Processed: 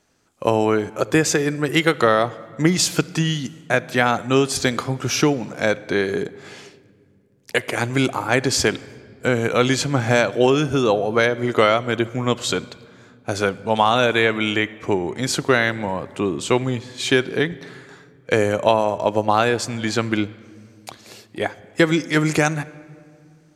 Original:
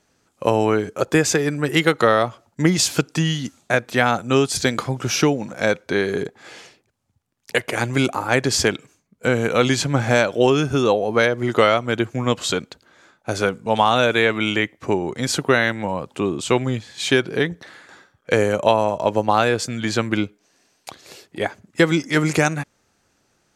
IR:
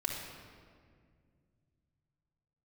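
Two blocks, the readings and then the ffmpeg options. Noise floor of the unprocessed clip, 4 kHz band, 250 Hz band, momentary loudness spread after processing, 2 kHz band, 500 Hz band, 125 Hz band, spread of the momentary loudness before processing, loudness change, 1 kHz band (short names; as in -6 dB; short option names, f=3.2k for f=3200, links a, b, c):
-66 dBFS, 0.0 dB, 0.0 dB, 9 LU, 0.0 dB, 0.0 dB, -0.5 dB, 9 LU, 0.0 dB, 0.0 dB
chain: -filter_complex "[0:a]asplit=2[a][b];[1:a]atrim=start_sample=2205,asetrate=40131,aresample=44100[c];[b][c]afir=irnorm=-1:irlink=0,volume=-19dB[d];[a][d]amix=inputs=2:normalize=0,volume=-1dB"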